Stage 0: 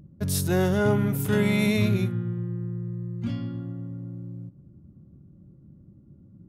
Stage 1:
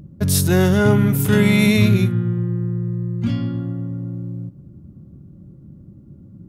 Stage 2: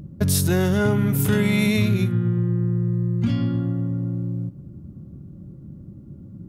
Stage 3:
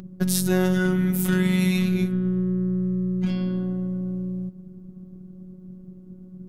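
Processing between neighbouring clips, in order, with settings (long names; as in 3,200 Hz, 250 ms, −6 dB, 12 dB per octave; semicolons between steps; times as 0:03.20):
dynamic equaliser 650 Hz, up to −5 dB, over −36 dBFS, Q 0.83; level +9 dB
downward compressor 4 to 1, threshold −19 dBFS, peak gain reduction 8.5 dB; level +2 dB
phases set to zero 184 Hz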